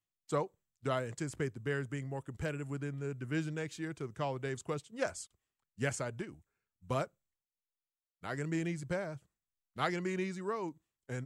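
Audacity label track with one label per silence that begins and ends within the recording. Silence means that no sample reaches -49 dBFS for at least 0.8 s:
7.060000	8.230000	silence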